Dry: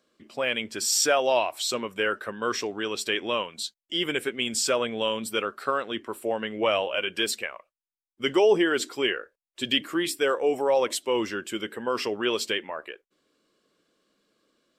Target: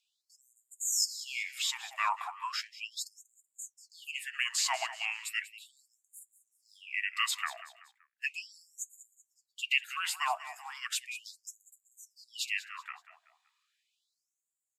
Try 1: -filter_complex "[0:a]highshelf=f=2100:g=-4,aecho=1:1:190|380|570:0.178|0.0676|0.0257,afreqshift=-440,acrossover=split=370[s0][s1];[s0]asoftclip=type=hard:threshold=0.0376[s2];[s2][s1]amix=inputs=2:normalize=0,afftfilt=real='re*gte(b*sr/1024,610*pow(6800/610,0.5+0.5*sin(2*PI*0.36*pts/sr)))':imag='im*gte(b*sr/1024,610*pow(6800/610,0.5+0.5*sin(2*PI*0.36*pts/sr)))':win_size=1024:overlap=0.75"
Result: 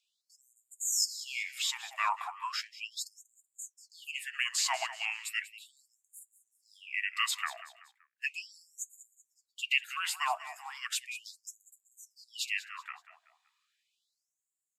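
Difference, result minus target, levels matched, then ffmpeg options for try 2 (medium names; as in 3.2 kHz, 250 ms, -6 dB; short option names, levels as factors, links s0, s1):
hard clipper: distortion -4 dB
-filter_complex "[0:a]highshelf=f=2100:g=-4,aecho=1:1:190|380|570:0.178|0.0676|0.0257,afreqshift=-440,acrossover=split=370[s0][s1];[s0]asoftclip=type=hard:threshold=0.0141[s2];[s2][s1]amix=inputs=2:normalize=0,afftfilt=real='re*gte(b*sr/1024,610*pow(6800/610,0.5+0.5*sin(2*PI*0.36*pts/sr)))':imag='im*gte(b*sr/1024,610*pow(6800/610,0.5+0.5*sin(2*PI*0.36*pts/sr)))':win_size=1024:overlap=0.75"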